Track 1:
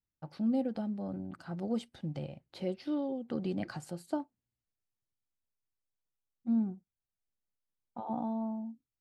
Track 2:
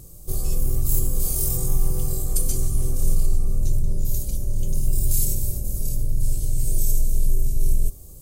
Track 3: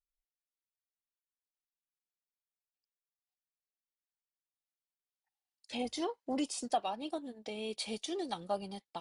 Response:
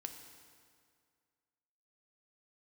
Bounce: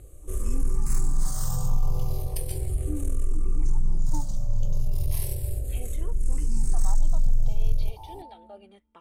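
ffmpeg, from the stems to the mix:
-filter_complex "[0:a]asplit=3[s0][s1][s2];[s0]bandpass=f=300:t=q:w=8,volume=1[s3];[s1]bandpass=f=870:t=q:w=8,volume=0.501[s4];[s2]bandpass=f=2240:t=q:w=8,volume=0.355[s5];[s3][s4][s5]amix=inputs=3:normalize=0,volume=1.33,asplit=2[s6][s7];[s7]volume=0.224[s8];[1:a]asoftclip=type=tanh:threshold=0.237,volume=1.06,asplit=2[s9][s10];[s10]volume=0.224[s11];[2:a]alimiter=level_in=2.24:limit=0.0631:level=0:latency=1:release=21,volume=0.447,volume=0.668,asplit=2[s12][s13];[s13]volume=0.0794[s14];[3:a]atrim=start_sample=2205[s15];[s8][s11][s14]amix=inputs=3:normalize=0[s16];[s16][s15]afir=irnorm=-1:irlink=0[s17];[s6][s9][s12][s17]amix=inputs=4:normalize=0,adynamicsmooth=sensitivity=4.5:basefreq=6200,equalizer=f=250:t=o:w=1:g=-6,equalizer=f=1000:t=o:w=1:g=6,equalizer=f=4000:t=o:w=1:g=-4,asplit=2[s18][s19];[s19]afreqshift=-0.35[s20];[s18][s20]amix=inputs=2:normalize=1"

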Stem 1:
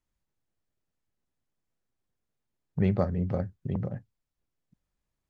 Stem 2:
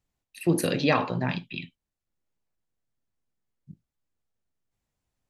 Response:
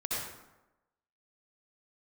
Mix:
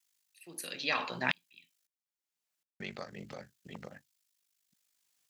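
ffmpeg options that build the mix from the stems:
-filter_complex "[0:a]alimiter=limit=0.106:level=0:latency=1:release=163,aeval=exprs='val(0)*sin(2*PI*25*n/s)':c=same,highshelf=f=2000:g=11,volume=0.841,asplit=3[s0][s1][s2];[s0]atrim=end=1.87,asetpts=PTS-STARTPTS,afade=t=out:st=1.866:d=0.004:c=hsin[s3];[s1]atrim=start=1.87:end=2.8,asetpts=PTS-STARTPTS,volume=0[s4];[s2]atrim=start=2.8,asetpts=PTS-STARTPTS,afade=t=in:d=0.004:c=hsin[s5];[s3][s4][s5]concat=n=3:v=0:a=1[s6];[1:a]aeval=exprs='val(0)*pow(10,-36*if(lt(mod(-0.76*n/s,1),2*abs(-0.76)/1000),1-mod(-0.76*n/s,1)/(2*abs(-0.76)/1000),(mod(-0.76*n/s,1)-2*abs(-0.76)/1000)/(1-2*abs(-0.76)/1000))/20)':c=same,volume=1.26[s7];[s6][s7]amix=inputs=2:normalize=0,highpass=190,tiltshelf=f=1200:g=-9.5"

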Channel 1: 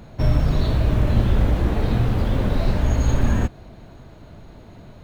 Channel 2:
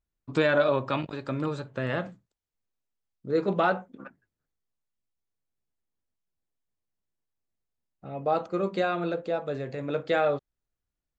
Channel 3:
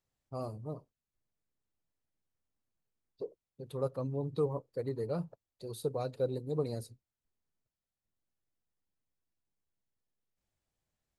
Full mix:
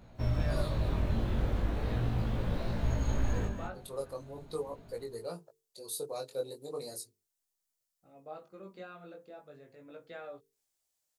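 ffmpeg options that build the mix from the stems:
-filter_complex "[0:a]volume=0.355,asplit=2[s0][s1];[s1]volume=0.422[s2];[1:a]volume=0.141[s3];[2:a]bass=f=250:g=-15,treble=f=4000:g=14,adelay=150,volume=1.12[s4];[s2]aecho=0:1:203:1[s5];[s0][s3][s4][s5]amix=inputs=4:normalize=0,flanger=delay=17:depth=4.8:speed=0.39,bandreject=f=50:t=h:w=6,bandreject=f=100:t=h:w=6,bandreject=f=150:t=h:w=6,bandreject=f=200:t=h:w=6,bandreject=f=250:t=h:w=6,bandreject=f=300:t=h:w=6,bandreject=f=350:t=h:w=6,bandreject=f=400:t=h:w=6,bandreject=f=450:t=h:w=6"

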